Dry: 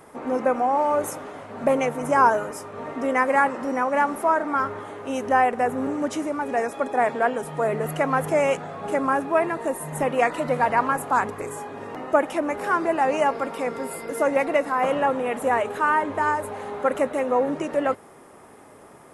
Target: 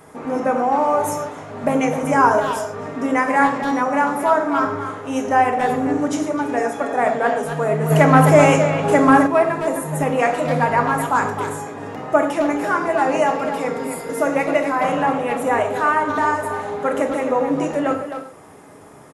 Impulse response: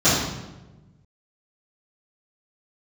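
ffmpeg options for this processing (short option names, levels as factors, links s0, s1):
-filter_complex "[0:a]asplit=2[s0][s1];[s1]adelay=260,highpass=300,lowpass=3400,asoftclip=type=hard:threshold=0.2,volume=0.398[s2];[s0][s2]amix=inputs=2:normalize=0,asplit=2[s3][s4];[1:a]atrim=start_sample=2205,afade=t=out:st=0.2:d=0.01,atrim=end_sample=9261,highshelf=f=5200:g=11[s5];[s4][s5]afir=irnorm=-1:irlink=0,volume=0.0501[s6];[s3][s6]amix=inputs=2:normalize=0,asplit=3[s7][s8][s9];[s7]afade=t=out:st=7.9:d=0.02[s10];[s8]acontrast=70,afade=t=in:st=7.9:d=0.02,afade=t=out:st=9.26:d=0.02[s11];[s9]afade=t=in:st=9.26:d=0.02[s12];[s10][s11][s12]amix=inputs=3:normalize=0,volume=1.26"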